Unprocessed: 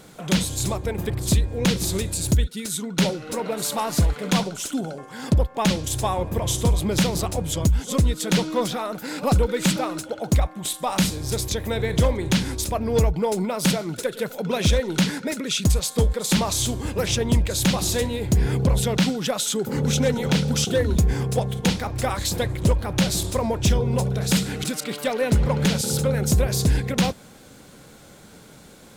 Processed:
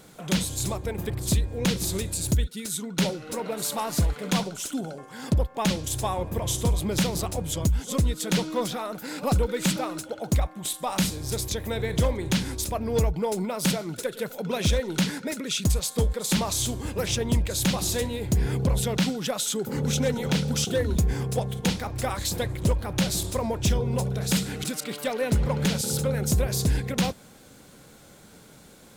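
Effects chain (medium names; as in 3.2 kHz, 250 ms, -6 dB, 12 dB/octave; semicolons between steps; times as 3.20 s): treble shelf 9.7 kHz +4 dB; trim -4 dB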